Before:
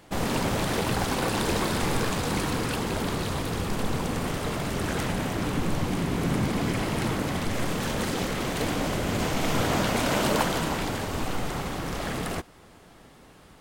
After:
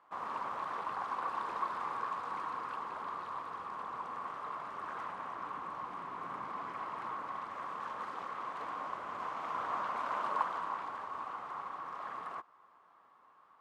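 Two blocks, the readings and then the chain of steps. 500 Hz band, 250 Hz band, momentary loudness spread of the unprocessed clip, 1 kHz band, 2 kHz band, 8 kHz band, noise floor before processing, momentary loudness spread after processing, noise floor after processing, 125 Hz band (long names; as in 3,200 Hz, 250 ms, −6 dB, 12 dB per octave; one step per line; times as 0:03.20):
−19.0 dB, −27.0 dB, 6 LU, −4.0 dB, −14.0 dB, below −30 dB, −52 dBFS, 6 LU, −64 dBFS, −32.5 dB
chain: resonant band-pass 1,100 Hz, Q 6.4
level +1.5 dB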